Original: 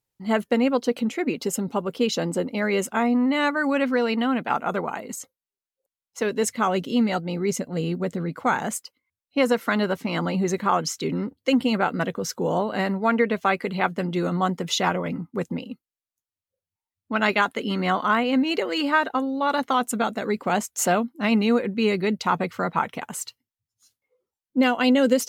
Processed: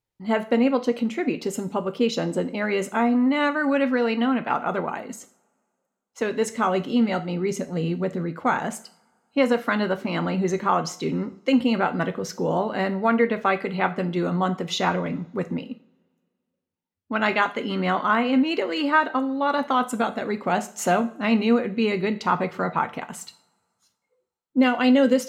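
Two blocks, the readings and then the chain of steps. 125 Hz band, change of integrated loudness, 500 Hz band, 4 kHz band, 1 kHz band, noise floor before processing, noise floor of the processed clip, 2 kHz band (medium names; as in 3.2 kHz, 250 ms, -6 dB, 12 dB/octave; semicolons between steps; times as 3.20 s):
0.0 dB, +0.5 dB, +0.5 dB, -2.0 dB, +0.5 dB, under -85 dBFS, -81 dBFS, 0.0 dB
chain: treble shelf 6 kHz -10.5 dB; two-slope reverb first 0.43 s, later 2.1 s, from -27 dB, DRR 9 dB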